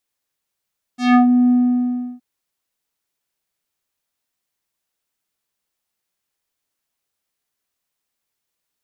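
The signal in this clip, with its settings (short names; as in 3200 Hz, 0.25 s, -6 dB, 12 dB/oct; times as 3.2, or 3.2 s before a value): synth note square B3 12 dB/oct, low-pass 380 Hz, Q 1.5, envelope 4.5 oct, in 0.30 s, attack 0.168 s, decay 0.12 s, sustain -5 dB, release 0.70 s, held 0.52 s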